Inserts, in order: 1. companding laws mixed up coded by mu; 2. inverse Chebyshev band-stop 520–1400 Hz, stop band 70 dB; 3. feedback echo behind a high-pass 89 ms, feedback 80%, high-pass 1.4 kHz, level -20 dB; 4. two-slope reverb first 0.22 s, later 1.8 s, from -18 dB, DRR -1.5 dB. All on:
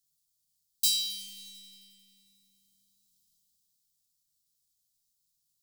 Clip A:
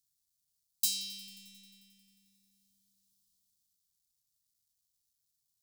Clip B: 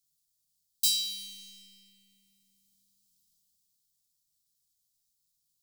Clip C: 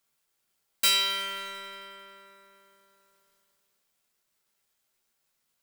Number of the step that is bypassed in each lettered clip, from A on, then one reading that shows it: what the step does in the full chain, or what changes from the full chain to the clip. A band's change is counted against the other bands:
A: 4, crest factor change +4.0 dB; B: 3, momentary loudness spread change -2 LU; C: 2, 2 kHz band +18.0 dB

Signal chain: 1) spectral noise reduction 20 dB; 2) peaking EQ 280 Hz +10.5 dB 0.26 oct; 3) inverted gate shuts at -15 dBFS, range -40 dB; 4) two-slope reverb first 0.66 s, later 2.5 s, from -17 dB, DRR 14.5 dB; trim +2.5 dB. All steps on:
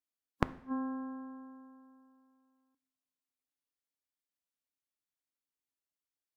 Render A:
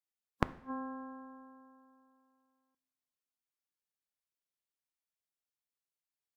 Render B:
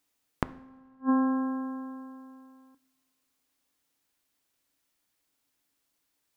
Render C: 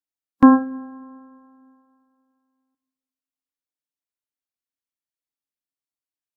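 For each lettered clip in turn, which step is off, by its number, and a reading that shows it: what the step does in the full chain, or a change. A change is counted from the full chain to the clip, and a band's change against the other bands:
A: 2, 250 Hz band -4.0 dB; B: 1, 250 Hz band +5.0 dB; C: 3, momentary loudness spread change -5 LU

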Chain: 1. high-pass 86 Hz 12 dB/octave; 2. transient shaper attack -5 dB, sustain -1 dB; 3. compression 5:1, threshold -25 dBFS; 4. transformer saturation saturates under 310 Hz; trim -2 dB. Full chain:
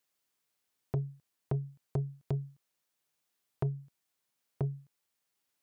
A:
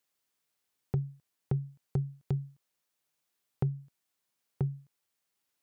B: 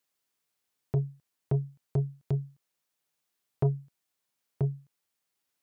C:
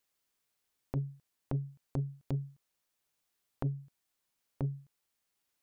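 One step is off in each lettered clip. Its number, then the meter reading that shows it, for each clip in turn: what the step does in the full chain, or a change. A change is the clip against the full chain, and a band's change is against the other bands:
4, crest factor change -1.5 dB; 3, mean gain reduction 3.0 dB; 1, 500 Hz band -3.5 dB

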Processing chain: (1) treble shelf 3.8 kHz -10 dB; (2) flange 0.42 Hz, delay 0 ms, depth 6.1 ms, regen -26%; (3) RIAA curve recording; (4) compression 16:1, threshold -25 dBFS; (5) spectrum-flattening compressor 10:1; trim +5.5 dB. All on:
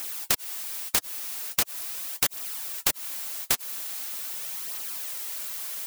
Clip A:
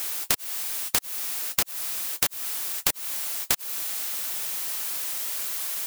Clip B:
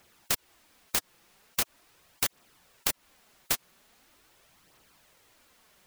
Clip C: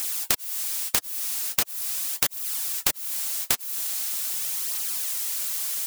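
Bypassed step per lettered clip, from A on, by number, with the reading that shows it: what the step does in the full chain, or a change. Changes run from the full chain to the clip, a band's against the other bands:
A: 2, momentary loudness spread change -2 LU; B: 3, 8 kHz band -2.5 dB; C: 1, 8 kHz band +3.5 dB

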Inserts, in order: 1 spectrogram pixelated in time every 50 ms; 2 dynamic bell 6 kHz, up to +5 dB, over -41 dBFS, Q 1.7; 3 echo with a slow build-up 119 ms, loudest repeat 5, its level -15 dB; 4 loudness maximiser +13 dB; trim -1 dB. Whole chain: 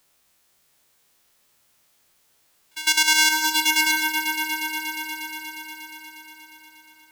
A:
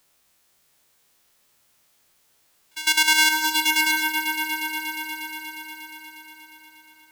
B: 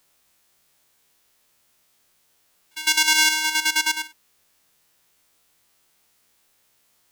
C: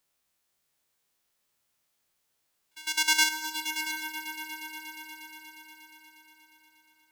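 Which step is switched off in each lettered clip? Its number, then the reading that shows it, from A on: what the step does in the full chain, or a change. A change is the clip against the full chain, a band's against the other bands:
2, 8 kHz band -2.5 dB; 3, crest factor change +1.5 dB; 4, crest factor change +5.5 dB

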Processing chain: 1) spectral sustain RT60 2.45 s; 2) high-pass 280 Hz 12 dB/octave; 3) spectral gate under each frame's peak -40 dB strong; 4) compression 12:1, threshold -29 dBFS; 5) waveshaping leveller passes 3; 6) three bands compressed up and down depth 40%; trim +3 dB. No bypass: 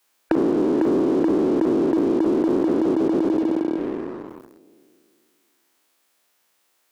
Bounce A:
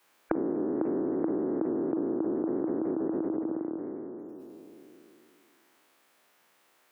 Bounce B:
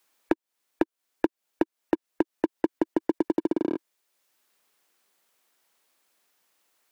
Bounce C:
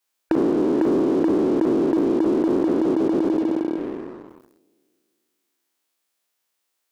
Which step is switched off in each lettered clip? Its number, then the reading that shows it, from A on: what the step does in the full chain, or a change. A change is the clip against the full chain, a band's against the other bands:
5, crest factor change +5.5 dB; 1, 2 kHz band +7.5 dB; 6, crest factor change -3.0 dB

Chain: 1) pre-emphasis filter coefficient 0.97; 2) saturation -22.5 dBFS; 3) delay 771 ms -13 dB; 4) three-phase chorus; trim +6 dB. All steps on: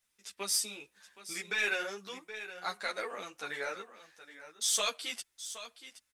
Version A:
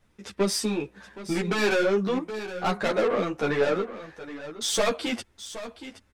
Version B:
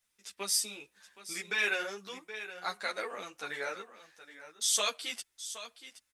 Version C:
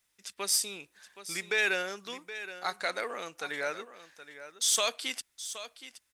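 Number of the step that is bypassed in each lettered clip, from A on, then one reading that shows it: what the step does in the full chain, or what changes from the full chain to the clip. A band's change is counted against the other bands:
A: 1, 125 Hz band +18.5 dB; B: 2, distortion -21 dB; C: 4, crest factor change -2.5 dB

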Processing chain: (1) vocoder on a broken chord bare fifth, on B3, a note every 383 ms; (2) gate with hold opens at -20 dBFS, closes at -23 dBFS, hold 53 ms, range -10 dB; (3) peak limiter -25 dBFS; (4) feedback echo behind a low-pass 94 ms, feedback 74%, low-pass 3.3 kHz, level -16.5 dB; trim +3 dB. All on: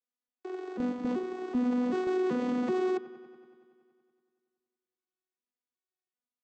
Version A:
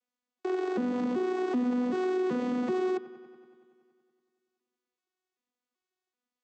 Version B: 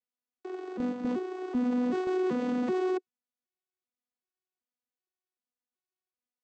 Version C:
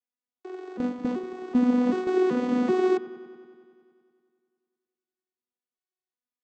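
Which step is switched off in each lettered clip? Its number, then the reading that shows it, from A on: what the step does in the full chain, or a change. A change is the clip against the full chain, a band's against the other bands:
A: 2, momentary loudness spread change -8 LU; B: 4, echo-to-direct -13.5 dB to none; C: 3, mean gain reduction 3.0 dB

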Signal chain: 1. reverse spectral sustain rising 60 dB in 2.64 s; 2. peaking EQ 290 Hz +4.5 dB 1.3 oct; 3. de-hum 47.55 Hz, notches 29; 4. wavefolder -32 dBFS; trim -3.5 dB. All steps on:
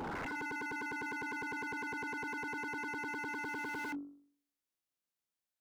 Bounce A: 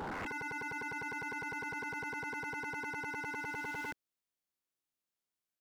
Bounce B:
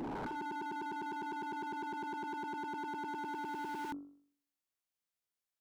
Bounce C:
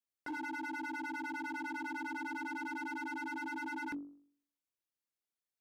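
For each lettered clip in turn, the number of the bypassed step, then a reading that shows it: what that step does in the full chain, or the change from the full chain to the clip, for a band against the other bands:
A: 3, 250 Hz band -4.0 dB; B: 2, 2 kHz band -7.5 dB; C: 1, 250 Hz band +4.0 dB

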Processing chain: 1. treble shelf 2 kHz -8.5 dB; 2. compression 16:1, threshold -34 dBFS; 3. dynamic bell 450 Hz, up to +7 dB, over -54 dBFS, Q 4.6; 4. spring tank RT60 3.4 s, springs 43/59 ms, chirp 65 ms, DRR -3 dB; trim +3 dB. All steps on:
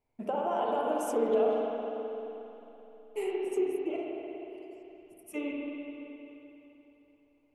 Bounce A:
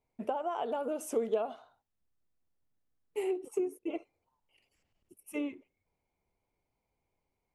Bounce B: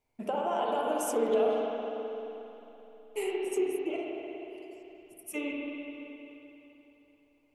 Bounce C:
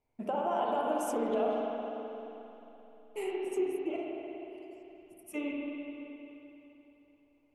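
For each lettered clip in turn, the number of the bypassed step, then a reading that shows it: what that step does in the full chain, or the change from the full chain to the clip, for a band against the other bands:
4, momentary loudness spread change -12 LU; 1, 8 kHz band +6.5 dB; 3, 500 Hz band -3.0 dB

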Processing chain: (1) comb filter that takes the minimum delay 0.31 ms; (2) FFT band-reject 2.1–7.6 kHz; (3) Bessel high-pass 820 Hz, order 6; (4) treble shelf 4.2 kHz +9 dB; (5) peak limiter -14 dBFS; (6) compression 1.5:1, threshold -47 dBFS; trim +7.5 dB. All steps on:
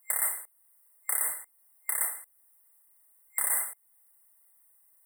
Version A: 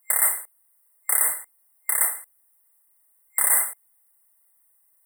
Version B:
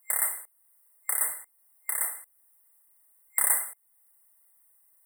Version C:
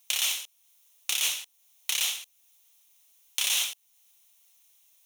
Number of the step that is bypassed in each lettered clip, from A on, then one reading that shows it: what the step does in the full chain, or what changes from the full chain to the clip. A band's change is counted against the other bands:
6, mean gain reduction 7.0 dB; 5, crest factor change +2.0 dB; 2, 2 kHz band +9.0 dB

